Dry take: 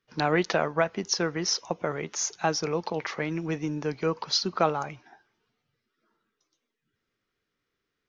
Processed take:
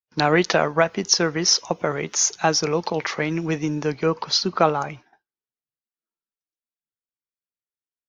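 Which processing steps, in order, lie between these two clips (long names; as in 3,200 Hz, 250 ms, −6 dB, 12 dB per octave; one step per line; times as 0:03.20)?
downward expander −43 dBFS
high-shelf EQ 4,500 Hz +5.5 dB, from 0:03.91 −2 dB
level +6 dB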